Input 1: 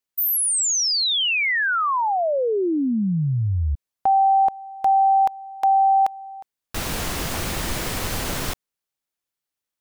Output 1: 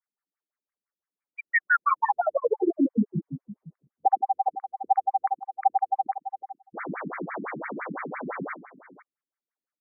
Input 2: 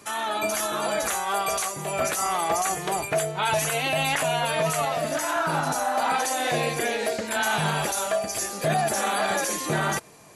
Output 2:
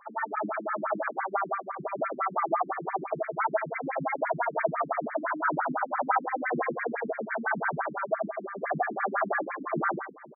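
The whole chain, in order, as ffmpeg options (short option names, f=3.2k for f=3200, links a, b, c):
-af "lowpass=f=2.7k:w=0.5412,lowpass=f=2.7k:w=1.3066,aecho=1:1:66|115|155|486:0.251|0.251|0.133|0.141,afftfilt=real='re*between(b*sr/1024,220*pow(1700/220,0.5+0.5*sin(2*PI*5.9*pts/sr))/1.41,220*pow(1700/220,0.5+0.5*sin(2*PI*5.9*pts/sr))*1.41)':imag='im*between(b*sr/1024,220*pow(1700/220,0.5+0.5*sin(2*PI*5.9*pts/sr))/1.41,220*pow(1700/220,0.5+0.5*sin(2*PI*5.9*pts/sr))*1.41)':win_size=1024:overlap=0.75,volume=2.5dB"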